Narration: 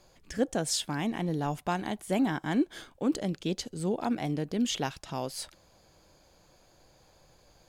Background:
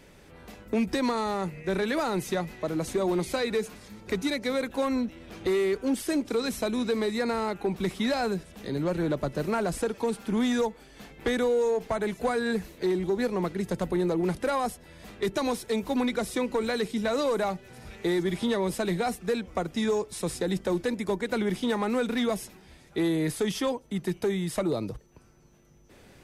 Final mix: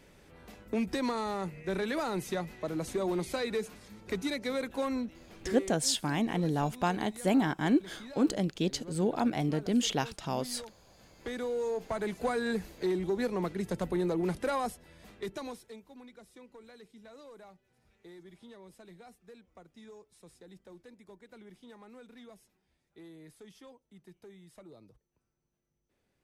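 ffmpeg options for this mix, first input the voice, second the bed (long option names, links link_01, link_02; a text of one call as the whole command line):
ffmpeg -i stem1.wav -i stem2.wav -filter_complex "[0:a]adelay=5150,volume=1dB[link_01];[1:a]volume=11dB,afade=type=out:start_time=4.85:duration=0.98:silence=0.177828,afade=type=in:start_time=10.89:duration=1.29:silence=0.158489,afade=type=out:start_time=14.55:duration=1.29:silence=0.0891251[link_02];[link_01][link_02]amix=inputs=2:normalize=0" out.wav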